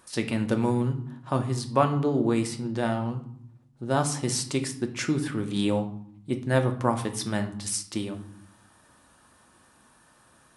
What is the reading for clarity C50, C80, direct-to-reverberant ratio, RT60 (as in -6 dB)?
12.0 dB, 15.5 dB, 5.0 dB, 0.70 s